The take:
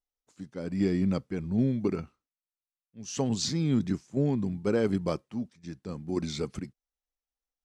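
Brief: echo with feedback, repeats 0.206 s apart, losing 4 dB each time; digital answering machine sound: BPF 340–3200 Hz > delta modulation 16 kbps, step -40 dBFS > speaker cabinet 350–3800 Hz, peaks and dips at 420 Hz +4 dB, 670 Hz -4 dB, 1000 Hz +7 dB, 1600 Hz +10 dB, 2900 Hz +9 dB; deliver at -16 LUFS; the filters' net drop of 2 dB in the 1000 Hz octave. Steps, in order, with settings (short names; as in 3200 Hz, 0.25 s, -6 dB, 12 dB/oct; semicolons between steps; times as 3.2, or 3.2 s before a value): BPF 340–3200 Hz; bell 1000 Hz -7 dB; feedback echo 0.206 s, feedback 63%, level -4 dB; delta modulation 16 kbps, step -40 dBFS; speaker cabinet 350–3800 Hz, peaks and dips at 420 Hz +4 dB, 670 Hz -4 dB, 1000 Hz +7 dB, 1600 Hz +10 dB, 2900 Hz +9 dB; gain +20 dB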